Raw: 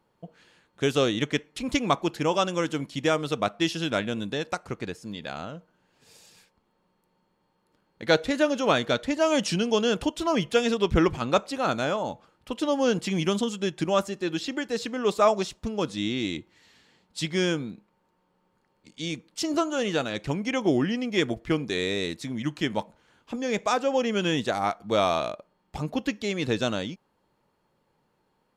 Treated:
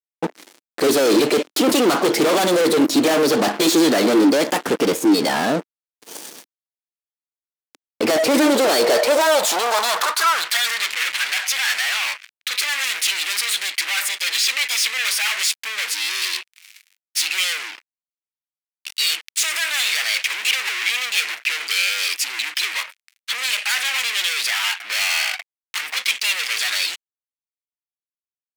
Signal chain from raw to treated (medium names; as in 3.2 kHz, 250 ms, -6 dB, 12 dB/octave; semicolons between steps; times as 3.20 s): formant shift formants +4 st; fuzz box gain 45 dB, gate -53 dBFS; high-pass sweep 290 Hz -> 2.2 kHz, 8.43–10.90 s; trim -4.5 dB